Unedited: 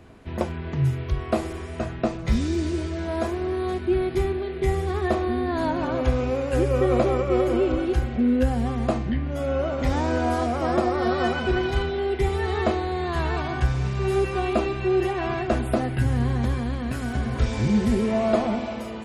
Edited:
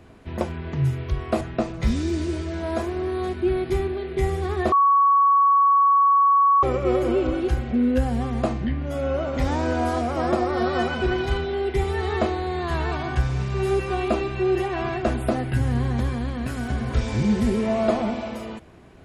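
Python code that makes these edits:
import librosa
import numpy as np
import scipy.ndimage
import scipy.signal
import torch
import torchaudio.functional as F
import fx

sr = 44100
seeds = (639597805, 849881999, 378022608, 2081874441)

y = fx.edit(x, sr, fx.cut(start_s=1.41, length_s=0.45),
    fx.bleep(start_s=5.17, length_s=1.91, hz=1120.0, db=-13.5), tone=tone)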